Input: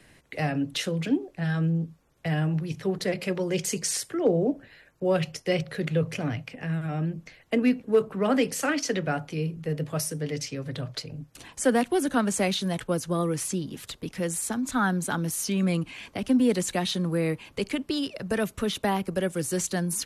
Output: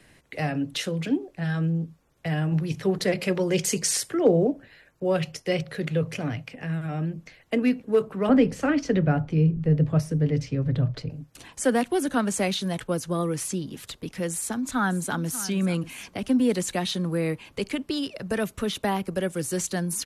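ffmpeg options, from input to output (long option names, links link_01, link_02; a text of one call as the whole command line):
ffmpeg -i in.wav -filter_complex "[0:a]asettb=1/sr,asplit=3[link_01][link_02][link_03];[link_01]atrim=end=8.294[link_04];[link_02]atrim=start=8.29:end=11.1,asetpts=PTS-STARTPTS,afade=type=in:duration=0.004:curve=qsin,afade=type=out:start_time=2.806:duration=0.004:curve=qsin,aemphasis=mode=reproduction:type=riaa[link_05];[link_03]atrim=start=11.096[link_06];[link_04][link_05]acrossfade=duration=0.004:curve1=hsin:curve2=qsin[link_07];[link_07][link_06]acrossfade=duration=0.004:curve1=qsin:curve2=hsin,asplit=2[link_08][link_09];[link_09]afade=type=in:start_time=14.31:duration=0.01,afade=type=out:start_time=15.48:duration=0.01,aecho=0:1:590|1180:0.177828|0.0177828[link_10];[link_08][link_10]amix=inputs=2:normalize=0,asplit=3[link_11][link_12][link_13];[link_11]atrim=end=2.522[link_14];[link_12]atrim=start=2.518:end=4.472,asetpts=PTS-STARTPTS,volume=3.5dB[link_15];[link_13]atrim=start=4.468[link_16];[link_14][link_15]acrossfade=duration=0.004:curve1=hsin:curve2=hsin[link_17];[link_17][link_16]acrossfade=duration=0.004:curve1=hsin:curve2=hsin" out.wav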